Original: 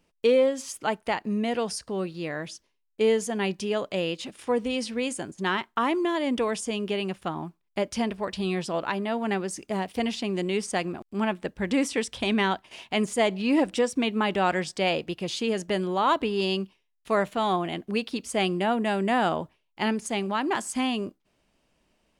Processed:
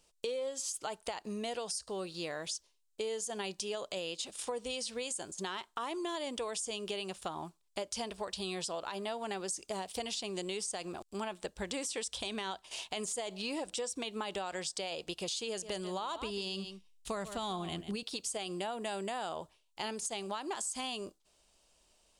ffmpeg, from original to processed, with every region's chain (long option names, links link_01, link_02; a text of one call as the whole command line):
ffmpeg -i in.wav -filter_complex "[0:a]asettb=1/sr,asplit=3[link_01][link_02][link_03];[link_01]atrim=end=15.484[link_04];[link_02]atrim=start=15.48:end=18.03,asetpts=PTS-STARTPTS,afade=type=in:duration=0.004:curve=qsin,afade=type=out:start_time=2.546:duration=0.004:curve=qsin,asubboost=boost=7:cutoff=240,aecho=1:1:143:0.178,atrim=end_sample=112455[link_05];[link_03]atrim=start=18.026[link_06];[link_04][link_05]acrossfade=duration=0.004:curve1=hsin:curve2=qsin[link_07];[link_07][link_06]acrossfade=duration=0.004:curve1=qsin:curve2=hsin,equalizer=frequency=125:width_type=o:width=1:gain=-9,equalizer=frequency=250:width_type=o:width=1:gain=-10,equalizer=frequency=2000:width_type=o:width=1:gain=-7,equalizer=frequency=4000:width_type=o:width=1:gain=5,equalizer=frequency=8000:width_type=o:width=1:gain=11,alimiter=limit=-20dB:level=0:latency=1,acompressor=threshold=-35dB:ratio=6" out.wav